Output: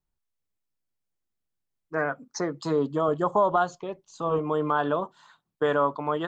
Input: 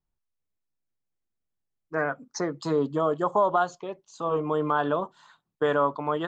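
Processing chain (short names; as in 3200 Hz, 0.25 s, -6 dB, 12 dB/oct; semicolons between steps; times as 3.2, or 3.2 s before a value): 3.08–4.39 low shelf 130 Hz +10 dB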